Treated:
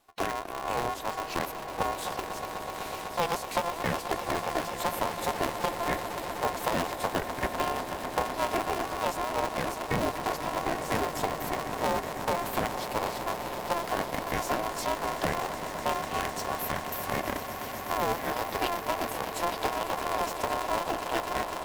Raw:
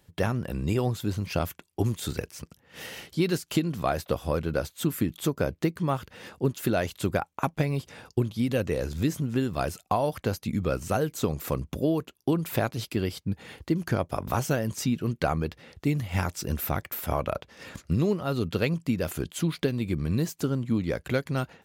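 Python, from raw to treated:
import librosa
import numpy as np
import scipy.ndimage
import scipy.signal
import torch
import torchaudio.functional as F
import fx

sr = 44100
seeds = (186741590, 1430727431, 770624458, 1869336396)

y = fx.band_invert(x, sr, width_hz=1000)
y = fx.peak_eq(y, sr, hz=1100.0, db=-3.5, octaves=0.77)
y = fx.echo_swell(y, sr, ms=125, loudest=8, wet_db=-14.0)
y = y * np.sign(np.sin(2.0 * np.pi * 170.0 * np.arange(len(y)) / sr))
y = F.gain(torch.from_numpy(y), -3.5).numpy()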